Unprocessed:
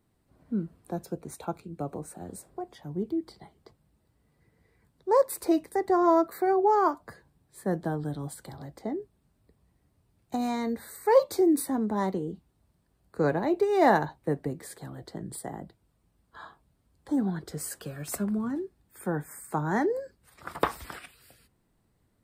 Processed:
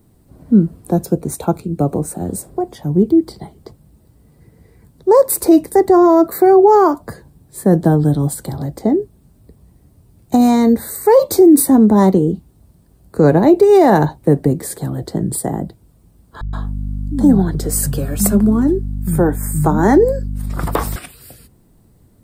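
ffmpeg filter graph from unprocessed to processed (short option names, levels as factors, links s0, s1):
-filter_complex "[0:a]asettb=1/sr,asplit=3[s0][s1][s2];[s0]atrim=end=16.414[s3];[s1]atrim=start=16.41:end=20.96,asetpts=PTS-STARTPTS,afade=t=in:d=0.004:c=qsin,afade=t=out:st=4.546:d=0.004:c=qsin,aeval=exprs='val(0)+0.00891*(sin(2*PI*50*n/s)+sin(2*PI*2*50*n/s)/2+sin(2*PI*3*50*n/s)/3+sin(2*PI*4*50*n/s)/4+sin(2*PI*5*50*n/s)/5)':c=same,acrossover=split=180[s4][s5];[s5]adelay=120[s6];[s4][s6]amix=inputs=2:normalize=0,atrim=end_sample=200655[s7];[s2]atrim=start=20.956[s8];[s3][s7]acrossfade=d=0.004:c1=hsin:c2=qsin[s9];[s9][s8]acrossfade=d=0.004:c1=qsin:c2=hsin,equalizer=f=2000:w=0.37:g=-11,alimiter=level_in=11.9:limit=0.891:release=50:level=0:latency=1,volume=0.891"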